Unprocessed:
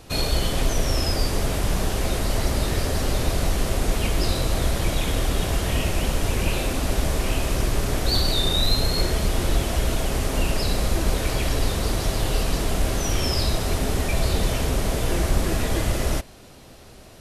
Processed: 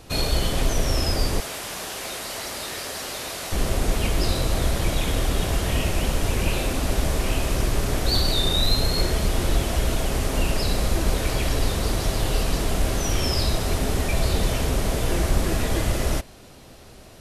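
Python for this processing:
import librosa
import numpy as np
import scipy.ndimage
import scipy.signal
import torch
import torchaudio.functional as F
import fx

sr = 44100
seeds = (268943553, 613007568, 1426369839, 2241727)

y = fx.highpass(x, sr, hz=1100.0, slope=6, at=(1.4, 3.52))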